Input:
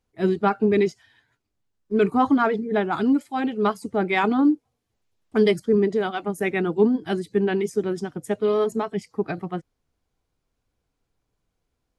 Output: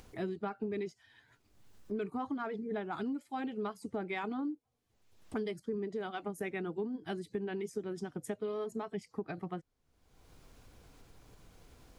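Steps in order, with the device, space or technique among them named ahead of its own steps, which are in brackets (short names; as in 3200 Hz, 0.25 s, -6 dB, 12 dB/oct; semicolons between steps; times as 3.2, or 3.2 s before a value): upward and downward compression (upward compressor, threshold -34 dBFS; compressor 6:1, threshold -31 dBFS, peak gain reduction 17 dB); gain -4 dB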